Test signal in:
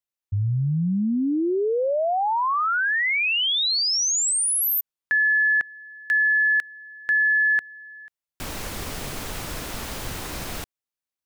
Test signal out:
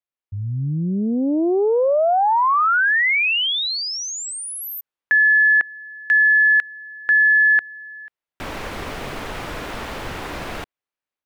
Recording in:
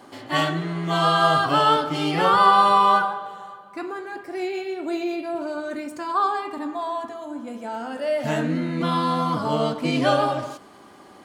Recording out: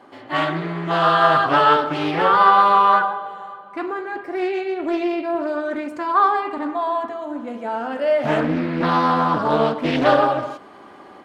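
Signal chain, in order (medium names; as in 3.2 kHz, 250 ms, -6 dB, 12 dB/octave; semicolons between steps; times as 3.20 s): tone controls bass -6 dB, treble -14 dB; level rider gain up to 6 dB; loudspeaker Doppler distortion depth 0.33 ms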